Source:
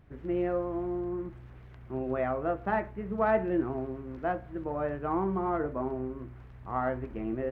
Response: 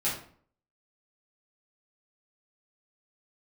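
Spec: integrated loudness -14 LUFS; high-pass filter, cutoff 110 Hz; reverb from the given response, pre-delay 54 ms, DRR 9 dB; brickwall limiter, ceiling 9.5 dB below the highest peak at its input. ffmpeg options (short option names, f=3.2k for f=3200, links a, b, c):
-filter_complex "[0:a]highpass=110,alimiter=level_in=0.5dB:limit=-24dB:level=0:latency=1,volume=-0.5dB,asplit=2[a][b];[1:a]atrim=start_sample=2205,adelay=54[c];[b][c]afir=irnorm=-1:irlink=0,volume=-16.5dB[d];[a][d]amix=inputs=2:normalize=0,volume=20.5dB"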